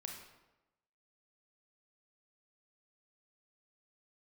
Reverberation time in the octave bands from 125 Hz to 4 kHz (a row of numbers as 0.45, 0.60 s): 1.0, 1.0, 1.0, 1.0, 0.85, 0.70 s